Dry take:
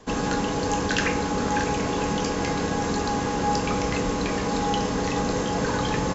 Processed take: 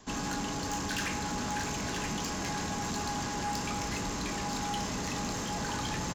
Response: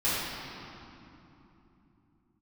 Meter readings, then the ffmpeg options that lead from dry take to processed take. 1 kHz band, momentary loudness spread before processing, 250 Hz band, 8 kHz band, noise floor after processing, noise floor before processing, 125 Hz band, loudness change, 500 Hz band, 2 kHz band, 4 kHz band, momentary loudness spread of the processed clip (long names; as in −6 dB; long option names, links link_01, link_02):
−8.5 dB, 2 LU, −10.0 dB, can't be measured, −35 dBFS, −27 dBFS, −8.5 dB, −8.5 dB, −14.5 dB, −7.5 dB, −5.0 dB, 1 LU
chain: -filter_complex "[0:a]highshelf=frequency=5100:gain=9.5,asplit=2[link_01][link_02];[link_02]aecho=0:1:978:0.376[link_03];[link_01][link_03]amix=inputs=2:normalize=0,asoftclip=type=tanh:threshold=-23dB,equalizer=frequency=480:width=4.4:gain=-11,volume=-5.5dB"